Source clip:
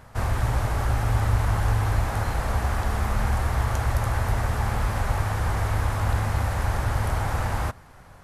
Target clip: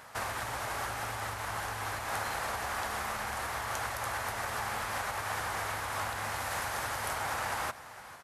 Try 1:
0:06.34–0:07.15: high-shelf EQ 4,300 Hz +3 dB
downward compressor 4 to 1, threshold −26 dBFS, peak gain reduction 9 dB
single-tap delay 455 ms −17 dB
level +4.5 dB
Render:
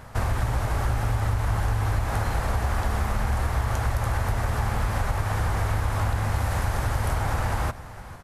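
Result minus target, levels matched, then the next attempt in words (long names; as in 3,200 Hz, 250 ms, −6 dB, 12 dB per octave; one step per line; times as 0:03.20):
1,000 Hz band −4.5 dB
0:06.34–0:07.15: high-shelf EQ 4,300 Hz +3 dB
downward compressor 4 to 1, threshold −26 dBFS, peak gain reduction 9 dB
high-pass filter 1,100 Hz 6 dB per octave
single-tap delay 455 ms −17 dB
level +4.5 dB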